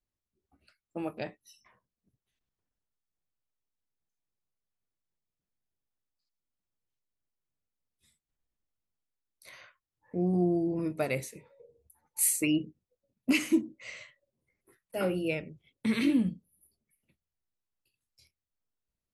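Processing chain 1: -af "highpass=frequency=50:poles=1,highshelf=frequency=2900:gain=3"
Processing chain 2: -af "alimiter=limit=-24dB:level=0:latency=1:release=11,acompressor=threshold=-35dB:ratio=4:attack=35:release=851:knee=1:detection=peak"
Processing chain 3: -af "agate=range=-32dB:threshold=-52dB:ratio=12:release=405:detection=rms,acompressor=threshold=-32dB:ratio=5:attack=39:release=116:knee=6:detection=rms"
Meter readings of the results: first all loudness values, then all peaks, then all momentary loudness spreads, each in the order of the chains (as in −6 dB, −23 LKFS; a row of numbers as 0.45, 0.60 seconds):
−29.5, −39.5, −36.0 LKFS; −10.0, −24.0, −19.5 dBFS; 18, 17, 18 LU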